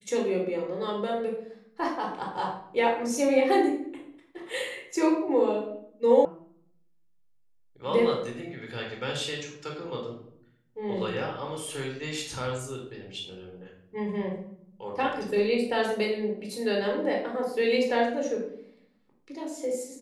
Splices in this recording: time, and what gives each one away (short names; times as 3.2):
6.25 sound cut off